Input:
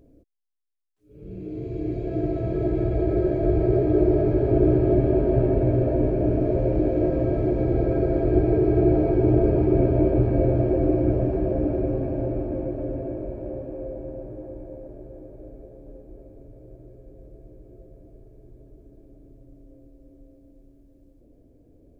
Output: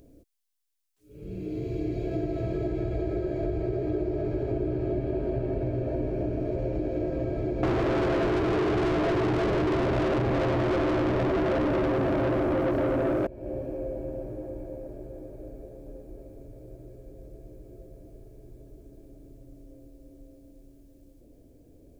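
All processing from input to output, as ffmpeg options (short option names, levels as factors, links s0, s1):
-filter_complex "[0:a]asettb=1/sr,asplit=3[s0][s1][s2];[s0]atrim=end=7.634[s3];[s1]atrim=start=7.63:end=13.27,asetpts=PTS-STARTPTS,afade=t=in:d=0.004:c=qsin,afade=t=out:st=5.636:d=0.004:c=qsin,bass=f=250:g=7,treble=f=4000:g=14,asplit=2[s4][s5];[s5]highpass=f=720:p=1,volume=70.8,asoftclip=type=tanh:threshold=0.794[s6];[s4][s6]amix=inputs=2:normalize=0,lowpass=f=1100:p=1,volume=0.501[s7];[s2]atrim=start=13.266[s8];[s3][s7]acrossfade=d=0.004:c1=hsin:c2=qsin[s9];[s9][s8]acrossfade=d=0.004:c1=qsin:c2=hsin,highshelf=f=2400:g=11.5,acompressor=threshold=0.0501:ratio=6"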